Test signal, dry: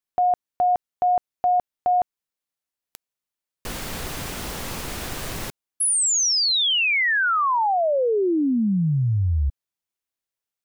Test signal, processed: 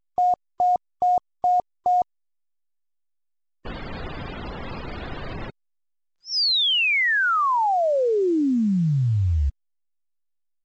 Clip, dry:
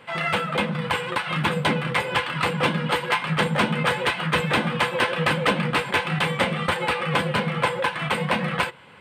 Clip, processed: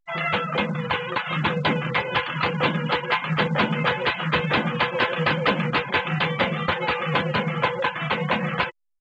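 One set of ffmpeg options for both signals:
-af "afftfilt=real='re*gte(hypot(re,im),0.0282)':imag='im*gte(hypot(re,im),0.0282)':win_size=1024:overlap=0.75,aresample=11025,aresample=44100" -ar 16000 -c:a pcm_alaw

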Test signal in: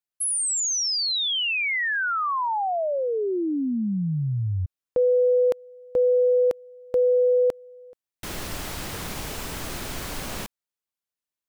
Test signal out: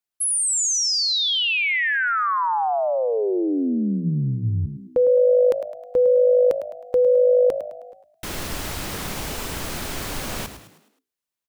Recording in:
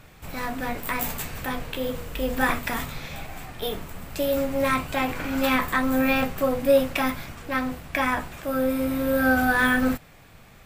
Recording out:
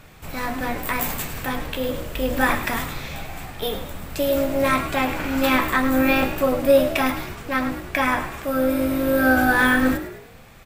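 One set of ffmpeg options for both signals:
-filter_complex "[0:a]bandreject=f=60:t=h:w=6,bandreject=f=120:t=h:w=6,bandreject=f=180:t=h:w=6,asplit=6[a][b][c][d][e][f];[b]adelay=105,afreqshift=52,volume=-11dB[g];[c]adelay=210,afreqshift=104,volume=-18.1dB[h];[d]adelay=315,afreqshift=156,volume=-25.3dB[i];[e]adelay=420,afreqshift=208,volume=-32.4dB[j];[f]adelay=525,afreqshift=260,volume=-39.5dB[k];[a][g][h][i][j][k]amix=inputs=6:normalize=0,volume=3dB"

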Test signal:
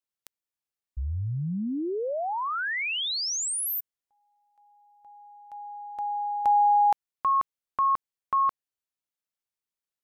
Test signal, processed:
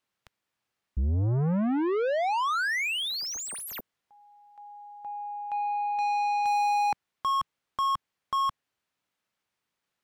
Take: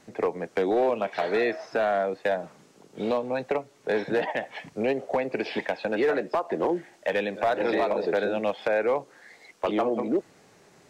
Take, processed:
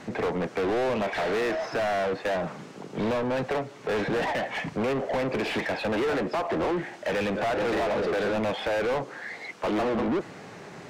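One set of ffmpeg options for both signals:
-filter_complex "[0:a]bass=f=250:g=14,treble=f=4k:g=-2,asplit=2[a][b];[b]highpass=f=720:p=1,volume=31dB,asoftclip=type=tanh:threshold=-11.5dB[c];[a][c]amix=inputs=2:normalize=0,lowpass=f=2.3k:p=1,volume=-6dB,volume=-8.5dB"

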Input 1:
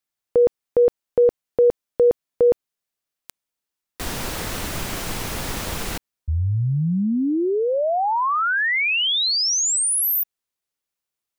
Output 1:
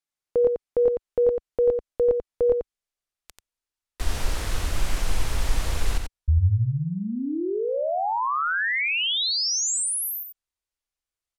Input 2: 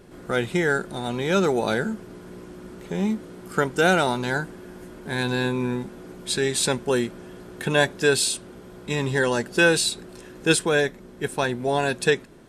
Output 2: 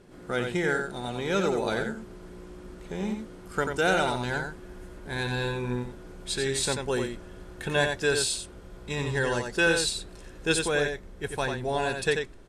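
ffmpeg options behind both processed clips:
-filter_complex "[0:a]lowpass=11k,asubboost=boost=7.5:cutoff=65,asplit=2[a][b];[b]aecho=0:1:89:0.531[c];[a][c]amix=inputs=2:normalize=0,volume=-5dB"

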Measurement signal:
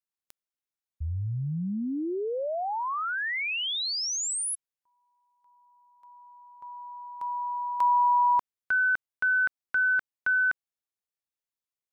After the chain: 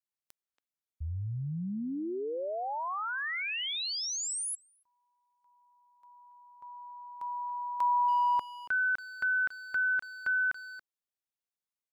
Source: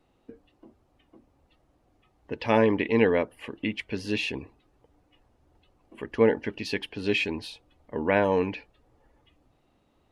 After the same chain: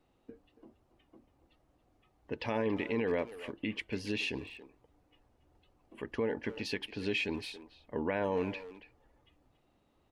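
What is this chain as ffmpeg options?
-filter_complex "[0:a]alimiter=limit=-18.5dB:level=0:latency=1:release=85,asplit=2[a][b];[b]adelay=280,highpass=300,lowpass=3.4k,asoftclip=type=hard:threshold=-27dB,volume=-12dB[c];[a][c]amix=inputs=2:normalize=0,volume=-4.5dB"

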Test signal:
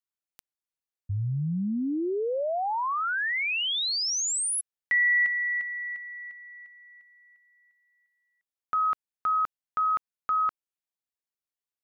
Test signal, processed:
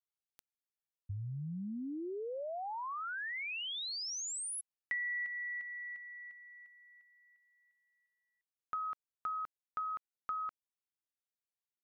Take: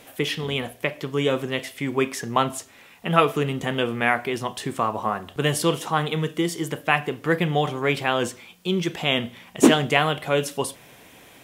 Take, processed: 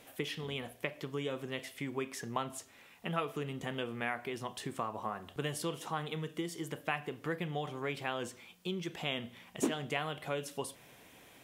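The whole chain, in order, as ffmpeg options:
-af "acompressor=threshold=-33dB:ratio=2:attack=70:release=291:knee=6:detection=peak,volume=-9dB"

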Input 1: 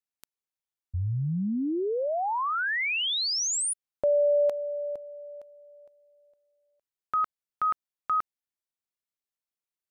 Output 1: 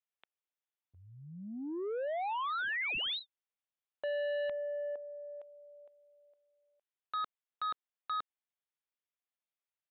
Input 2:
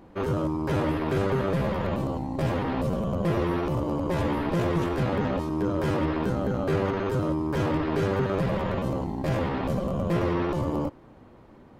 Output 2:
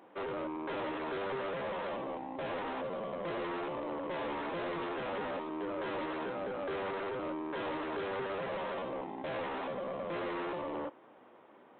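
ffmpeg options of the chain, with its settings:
-af "highpass=440,aresample=8000,asoftclip=type=tanh:threshold=-31dB,aresample=44100,volume=-2dB"

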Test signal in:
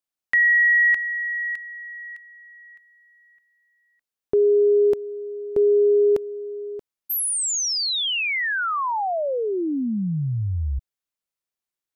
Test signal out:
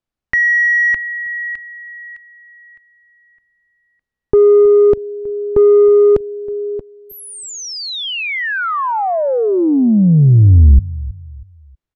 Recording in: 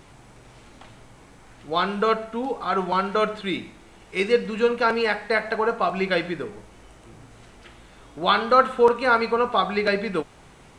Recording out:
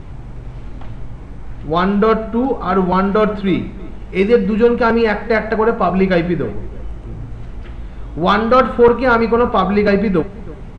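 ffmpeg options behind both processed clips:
-filter_complex "[0:a]aemphasis=mode=reproduction:type=riaa,asplit=2[a][b];[b]adelay=320,lowpass=f=1.7k:p=1,volume=-20dB,asplit=2[c][d];[d]adelay=320,lowpass=f=1.7k:p=1,volume=0.33,asplit=2[e][f];[f]adelay=320,lowpass=f=1.7k:p=1,volume=0.33[g];[a][c][e][g]amix=inputs=4:normalize=0,acontrast=71"

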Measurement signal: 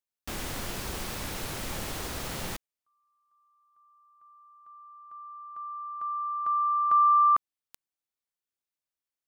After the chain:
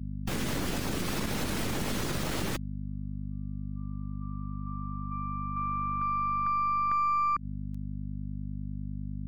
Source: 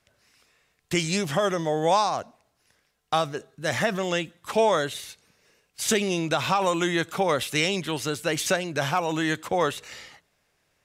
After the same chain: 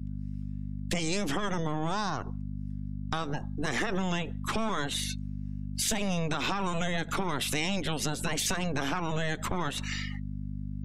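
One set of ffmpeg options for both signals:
-filter_complex "[0:a]acrossover=split=850|2500[a][b][c];[a]aeval=exprs='abs(val(0))':c=same[d];[d][b][c]amix=inputs=3:normalize=0,afftdn=nr=21:nf=-47,aeval=exprs='val(0)+0.00501*(sin(2*PI*50*n/s)+sin(2*PI*2*50*n/s)/2+sin(2*PI*3*50*n/s)/3+sin(2*PI*4*50*n/s)/4+sin(2*PI*5*50*n/s)/5)':c=same,equalizer=f=210:w=0.55:g=9.5,acompressor=threshold=-33dB:ratio=5:attack=3.4:release=97:knee=1:detection=rms,volume=7dB"

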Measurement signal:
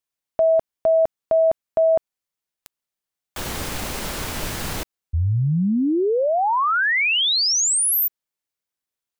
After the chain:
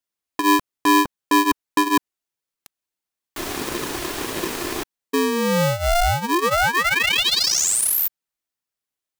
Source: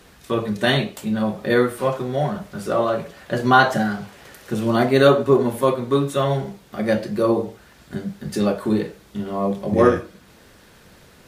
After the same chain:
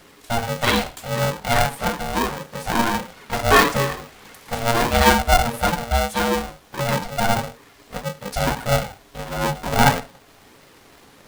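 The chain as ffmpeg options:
-af "flanger=delay=0.6:depth=2.7:regen=-11:speed=1.6:shape=triangular,aeval=exprs='val(0)*sgn(sin(2*PI*350*n/s))':c=same,volume=3dB"

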